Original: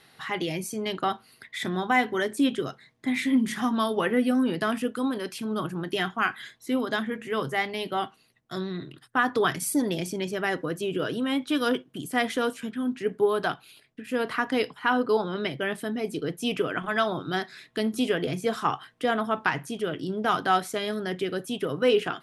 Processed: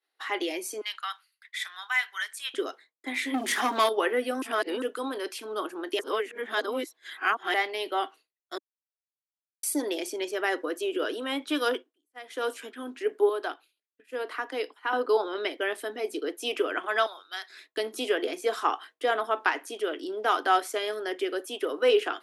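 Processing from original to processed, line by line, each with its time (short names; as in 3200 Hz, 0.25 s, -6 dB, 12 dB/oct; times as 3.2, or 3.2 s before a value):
0.81–2.54 HPF 1300 Hz 24 dB/oct
3.34–3.89 sample leveller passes 2
4.42–4.82 reverse
5.99–7.54 reverse
8.58–9.63 mute
11.69–12.52 dip -17.5 dB, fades 0.27 s
13.29–14.93 ladder high-pass 200 Hz, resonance 25%
17.06–17.5 passive tone stack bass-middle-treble 10-0-10
20.38–21.61 notch 3900 Hz, Q 13
whole clip: steep high-pass 300 Hz 48 dB/oct; expander -42 dBFS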